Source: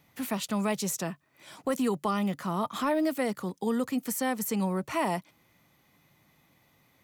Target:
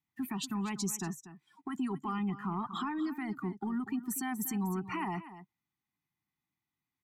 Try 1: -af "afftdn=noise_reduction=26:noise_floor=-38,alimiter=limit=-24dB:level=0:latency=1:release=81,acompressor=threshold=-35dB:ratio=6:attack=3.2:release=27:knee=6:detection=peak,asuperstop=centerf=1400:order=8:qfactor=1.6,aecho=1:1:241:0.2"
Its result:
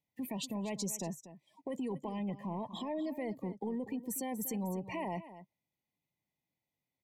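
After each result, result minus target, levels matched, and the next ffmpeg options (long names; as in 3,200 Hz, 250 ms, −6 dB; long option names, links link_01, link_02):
500 Hz band +8.0 dB; downward compressor: peak gain reduction +4.5 dB
-af "afftdn=noise_reduction=26:noise_floor=-38,alimiter=limit=-24dB:level=0:latency=1:release=81,acompressor=threshold=-35dB:ratio=6:attack=3.2:release=27:knee=6:detection=peak,asuperstop=centerf=540:order=8:qfactor=1.6,aecho=1:1:241:0.2"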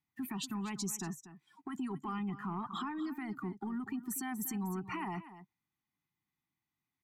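downward compressor: peak gain reduction +4.5 dB
-af "afftdn=noise_reduction=26:noise_floor=-38,alimiter=limit=-24dB:level=0:latency=1:release=81,acompressor=threshold=-29dB:ratio=6:attack=3.2:release=27:knee=6:detection=peak,asuperstop=centerf=540:order=8:qfactor=1.6,aecho=1:1:241:0.2"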